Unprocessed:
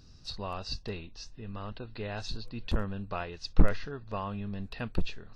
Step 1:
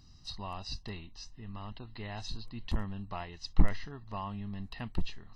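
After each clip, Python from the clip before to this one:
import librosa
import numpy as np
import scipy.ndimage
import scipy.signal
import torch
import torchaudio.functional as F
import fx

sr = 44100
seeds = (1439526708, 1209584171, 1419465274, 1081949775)

y = fx.bass_treble(x, sr, bass_db=-3, treble_db=0)
y = y + 0.65 * np.pad(y, (int(1.0 * sr / 1000.0), 0))[:len(y)]
y = fx.dynamic_eq(y, sr, hz=1200.0, q=3.7, threshold_db=-51.0, ratio=4.0, max_db=-5)
y = F.gain(torch.from_numpy(y), -3.5).numpy()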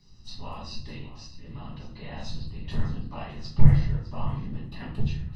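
y = fx.whisperise(x, sr, seeds[0])
y = y + 10.0 ** (-15.0 / 20.0) * np.pad(y, (int(607 * sr / 1000.0), 0))[:len(y)]
y = fx.room_shoebox(y, sr, seeds[1], volume_m3=73.0, walls='mixed', distance_m=1.3)
y = F.gain(torch.from_numpy(y), -5.0).numpy()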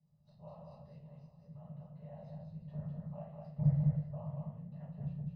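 y = fx.tracing_dist(x, sr, depth_ms=0.022)
y = fx.double_bandpass(y, sr, hz=310.0, octaves=1.9)
y = y + 10.0 ** (-3.5 / 20.0) * np.pad(y, (int(203 * sr / 1000.0), 0))[:len(y)]
y = F.gain(torch.from_numpy(y), -3.5).numpy()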